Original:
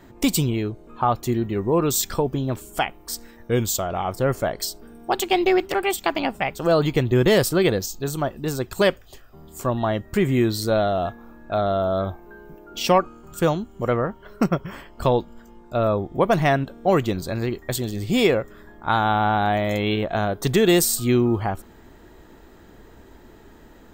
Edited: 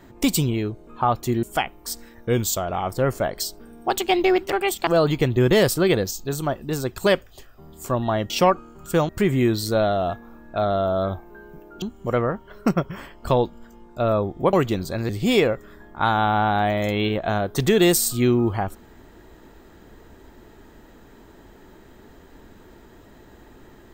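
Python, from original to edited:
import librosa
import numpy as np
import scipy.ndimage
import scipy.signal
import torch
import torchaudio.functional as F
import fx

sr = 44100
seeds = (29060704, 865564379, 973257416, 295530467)

y = fx.edit(x, sr, fx.cut(start_s=1.43, length_s=1.22),
    fx.cut(start_s=6.09, length_s=0.53),
    fx.move(start_s=12.78, length_s=0.79, to_s=10.05),
    fx.cut(start_s=16.28, length_s=0.62),
    fx.cut(start_s=17.46, length_s=0.5), tone=tone)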